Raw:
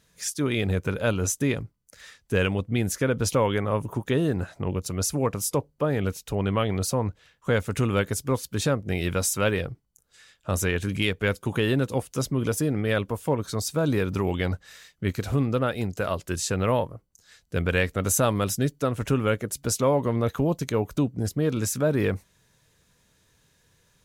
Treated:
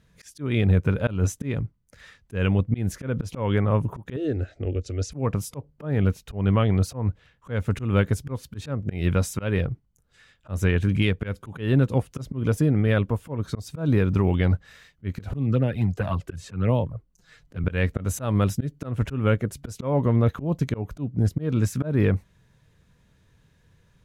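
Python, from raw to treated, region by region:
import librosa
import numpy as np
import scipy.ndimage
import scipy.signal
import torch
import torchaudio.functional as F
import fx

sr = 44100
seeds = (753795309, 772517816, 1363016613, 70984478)

y = fx.chain(x, sr, fx.lowpass(hz=7300.0, slope=24),
    fx.fixed_phaser(hz=410.0, stages=4), at=(4.16, 5.12))
y = fx.chain(y, sr, fx.env_flanger(rest_ms=7.5, full_db=-18.5),
    fx.band_squash(depth_pct=40), at=(15.29, 17.64))
y = fx.bass_treble(y, sr, bass_db=8, treble_db=-10)
y = fx.auto_swell(y, sr, attack_ms=174.0)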